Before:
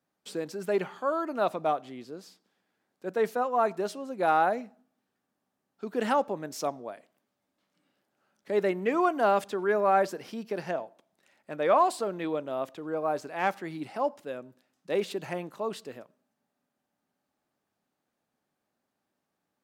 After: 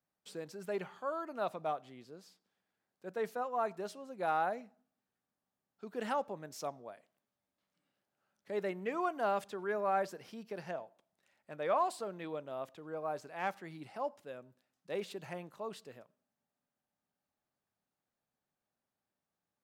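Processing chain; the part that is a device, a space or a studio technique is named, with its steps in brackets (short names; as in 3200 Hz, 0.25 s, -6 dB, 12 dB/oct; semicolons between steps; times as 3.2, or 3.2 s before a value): low shelf boost with a cut just above (low shelf 110 Hz +7.5 dB; bell 290 Hz -5 dB 0.97 oct); gain -8.5 dB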